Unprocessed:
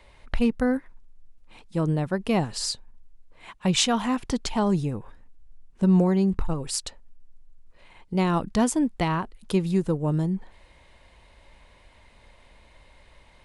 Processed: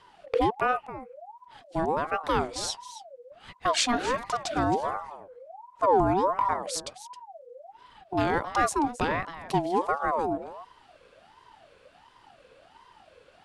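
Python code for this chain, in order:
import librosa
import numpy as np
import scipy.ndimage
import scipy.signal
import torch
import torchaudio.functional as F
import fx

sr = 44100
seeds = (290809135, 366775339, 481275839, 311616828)

y = scipy.signal.sosfilt(scipy.signal.butter(2, 9500.0, 'lowpass', fs=sr, output='sos'), x)
y = y + 10.0 ** (-14.5 / 20.0) * np.pad(y, (int(268 * sr / 1000.0), 0))[:len(y)]
y = fx.ring_lfo(y, sr, carrier_hz=740.0, swing_pct=35, hz=1.4)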